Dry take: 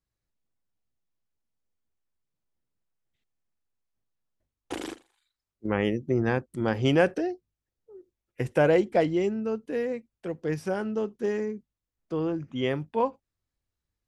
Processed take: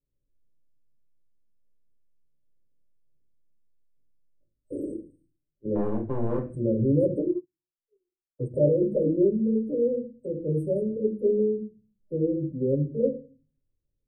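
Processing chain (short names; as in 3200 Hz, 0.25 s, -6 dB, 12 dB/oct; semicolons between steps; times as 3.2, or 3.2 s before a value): FFT band-reject 620–8100 Hz; limiter -19 dBFS, peak gain reduction 7.5 dB; loudest bins only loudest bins 32; 5.75–6.38 power-law curve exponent 2; reverb RT60 0.35 s, pre-delay 4 ms, DRR -3 dB; 7.32–8.54 upward expander 2.5:1, over -46 dBFS; gain -3 dB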